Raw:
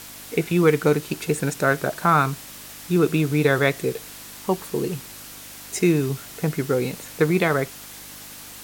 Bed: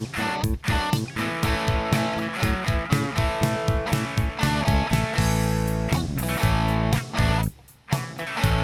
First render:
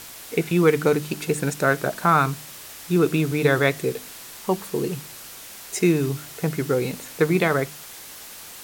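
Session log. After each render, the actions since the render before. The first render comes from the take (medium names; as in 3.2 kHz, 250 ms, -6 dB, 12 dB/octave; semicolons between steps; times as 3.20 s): de-hum 50 Hz, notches 6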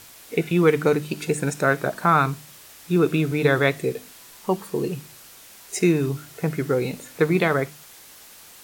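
noise print and reduce 6 dB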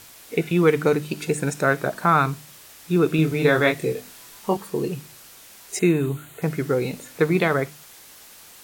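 3.16–4.57 s: doubling 25 ms -4.5 dB; 5.79–6.42 s: Butterworth band-stop 5.3 kHz, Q 2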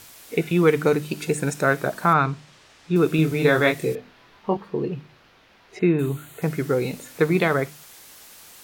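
2.13–2.96 s: distance through air 120 m; 3.95–5.99 s: distance through air 300 m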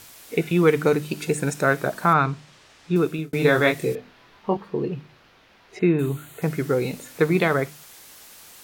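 2.93–3.33 s: fade out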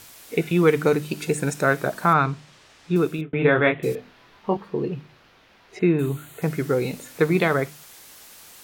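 3.21–3.83 s: steep low-pass 3.4 kHz 72 dB/octave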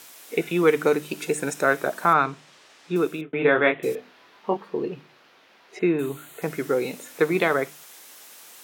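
high-pass 270 Hz 12 dB/octave; dynamic bell 4.5 kHz, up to -5 dB, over -59 dBFS, Q 7.2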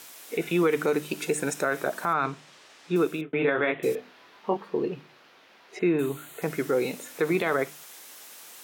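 peak limiter -15 dBFS, peak gain reduction 9.5 dB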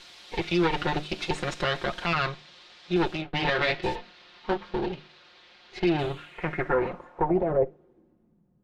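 comb filter that takes the minimum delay 5.6 ms; low-pass sweep 4 kHz -> 180 Hz, 5.99–8.46 s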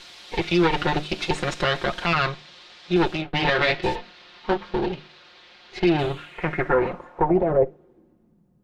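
trim +4.5 dB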